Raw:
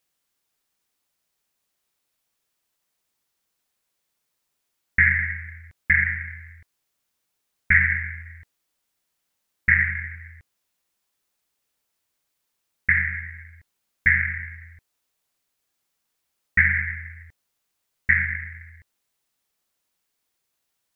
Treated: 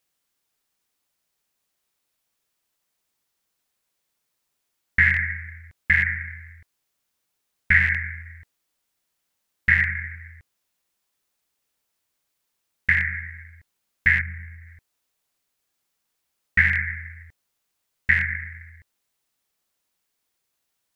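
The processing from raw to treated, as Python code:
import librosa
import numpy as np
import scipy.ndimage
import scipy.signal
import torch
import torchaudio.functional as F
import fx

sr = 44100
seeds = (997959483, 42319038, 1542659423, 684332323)

y = fx.rattle_buzz(x, sr, strikes_db=-27.0, level_db=-21.0)
y = fx.peak_eq(y, sr, hz=1800.0, db=fx.line((14.2, -13.5), (14.66, -5.5)), octaves=2.2, at=(14.2, 14.66), fade=0.02)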